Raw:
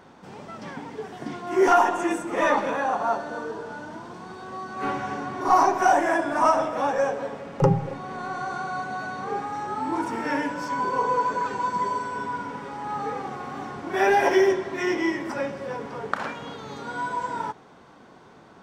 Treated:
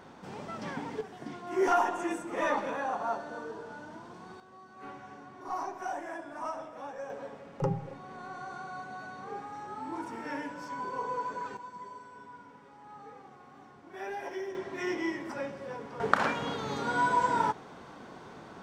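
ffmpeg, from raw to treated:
-af "asetnsamples=n=441:p=0,asendcmd='1.01 volume volume -8dB;4.4 volume volume -17.5dB;7.1 volume volume -11dB;11.57 volume volume -19dB;14.55 volume volume -8dB;16 volume volume 2.5dB',volume=-1dB"

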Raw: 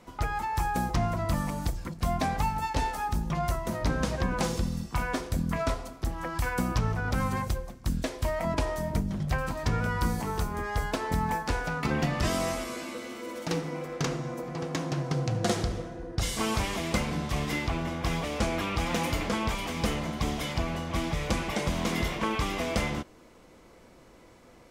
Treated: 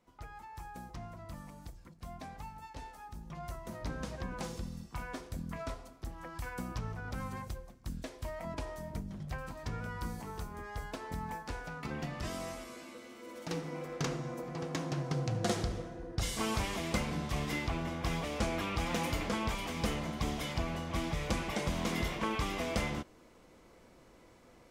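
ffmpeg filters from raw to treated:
-af "volume=-5dB,afade=t=in:st=3.12:d=0.64:silence=0.473151,afade=t=in:st=13.15:d=0.72:silence=0.473151"

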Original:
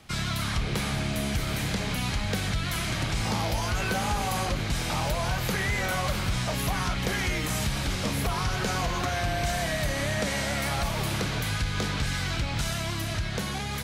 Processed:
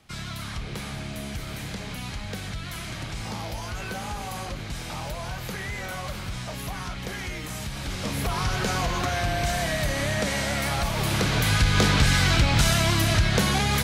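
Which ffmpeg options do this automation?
-af "volume=9dB,afade=t=in:st=7.71:d=0.76:silence=0.421697,afade=t=in:st=10.92:d=0.9:silence=0.446684"

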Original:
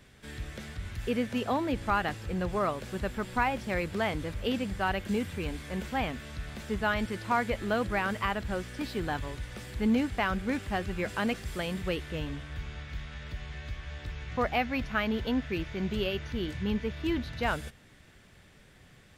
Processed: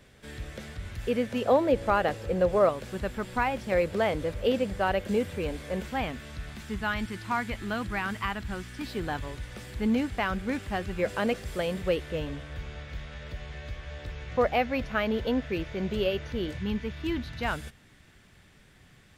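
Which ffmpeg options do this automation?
-af "asetnsamples=n=441:p=0,asendcmd='1.45 equalizer g 14.5;2.69 equalizer g 2.5;3.72 equalizer g 10.5;5.81 equalizer g 1;6.52 equalizer g -10.5;8.87 equalizer g 1;10.99 equalizer g 8.5;16.58 equalizer g -3.5',equalizer=f=530:t=o:w=0.67:g=5"

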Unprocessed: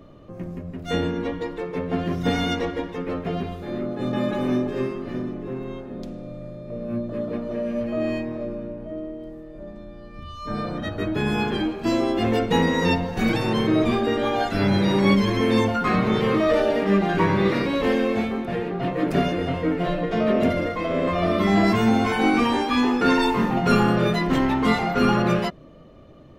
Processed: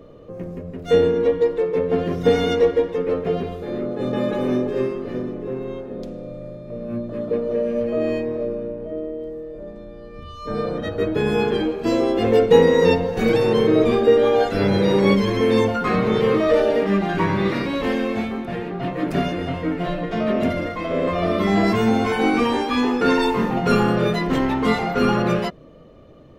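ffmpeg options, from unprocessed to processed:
-af "asetnsamples=n=441:p=0,asendcmd='6.57 equalizer g 3.5;7.31 equalizer g 14;15.17 equalizer g 7.5;16.86 equalizer g -3.5;20.91 equalizer g 6',equalizer=f=470:t=o:w=0.33:g=14"

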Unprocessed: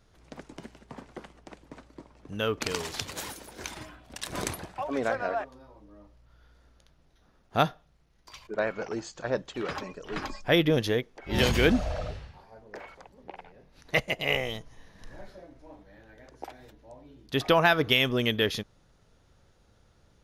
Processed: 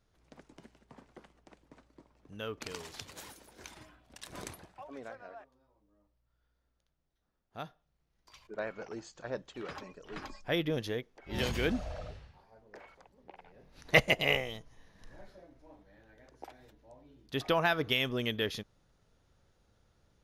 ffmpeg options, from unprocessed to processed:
-af "volume=11.5dB,afade=t=out:st=4.36:d=0.83:silence=0.398107,afade=t=in:st=7.62:d=0.78:silence=0.316228,afade=t=in:st=13.39:d=0.68:silence=0.237137,afade=t=out:st=14.07:d=0.38:silence=0.298538"

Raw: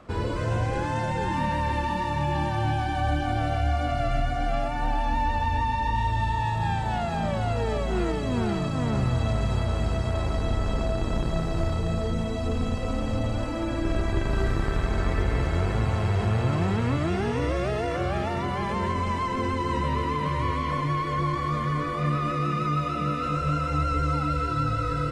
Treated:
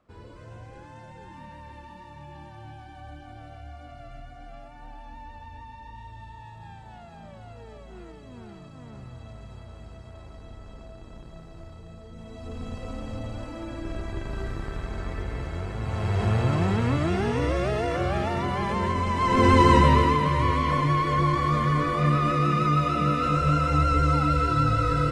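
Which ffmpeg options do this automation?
-af "volume=11.5dB,afade=t=in:st=12.1:d=0.67:silence=0.298538,afade=t=in:st=15.78:d=0.51:silence=0.375837,afade=t=in:st=19.15:d=0.45:silence=0.298538,afade=t=out:st=19.6:d=0.65:silence=0.398107"

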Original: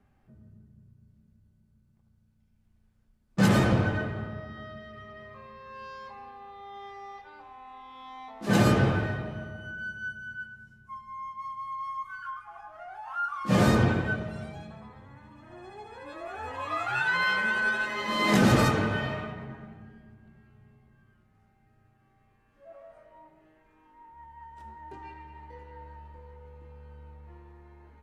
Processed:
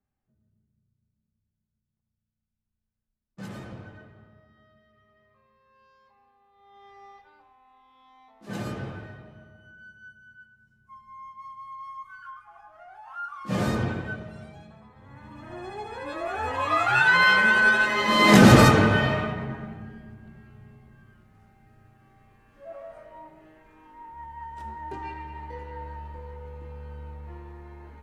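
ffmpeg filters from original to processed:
-af "volume=15dB,afade=t=in:st=6.51:d=0.54:silence=0.223872,afade=t=out:st=7.05:d=0.53:silence=0.446684,afade=t=in:st=10.56:d=0.57:silence=0.421697,afade=t=in:st=14.95:d=0.46:silence=0.237137"

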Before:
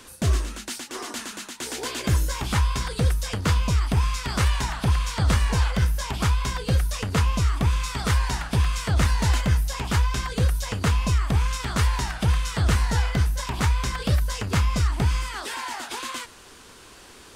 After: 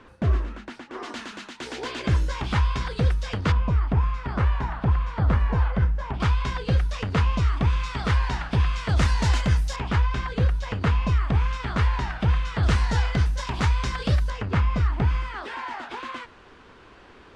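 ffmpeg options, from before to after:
-af "asetnsamples=n=441:p=0,asendcmd='1.03 lowpass f 3600;3.52 lowpass f 1500;6.2 lowpass f 3500;8.89 lowpass f 6300;9.76 lowpass f 2800;12.63 lowpass f 5100;14.3 lowpass f 2300',lowpass=1.8k"

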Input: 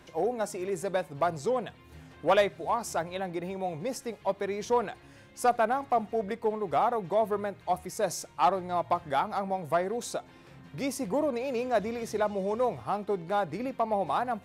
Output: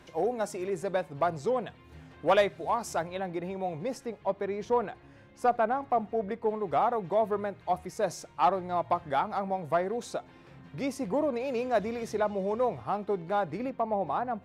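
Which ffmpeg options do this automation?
-af "asetnsamples=n=441:p=0,asendcmd='0.68 lowpass f 4000;2.26 lowpass f 8200;3.07 lowpass f 3300;4.06 lowpass f 1700;6.49 lowpass f 3500;11.4 lowpass f 6300;12.15 lowpass f 3300;13.7 lowpass f 1200',lowpass=f=8.6k:p=1"

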